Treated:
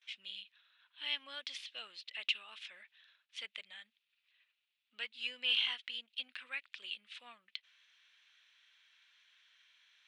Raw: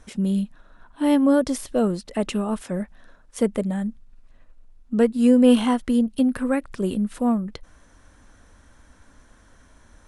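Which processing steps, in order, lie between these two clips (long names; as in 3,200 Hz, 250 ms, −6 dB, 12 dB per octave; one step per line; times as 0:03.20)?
noise gate with hold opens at −45 dBFS
flat-topped band-pass 3,000 Hz, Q 1.9
level +3 dB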